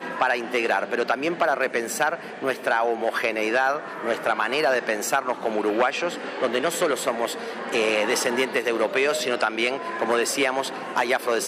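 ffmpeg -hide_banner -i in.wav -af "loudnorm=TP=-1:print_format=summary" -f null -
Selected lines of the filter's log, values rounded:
Input Integrated:    -23.7 LUFS
Input True Peak:      -8.2 dBTP
Input LRA:             0.7 LU
Input Threshold:     -33.7 LUFS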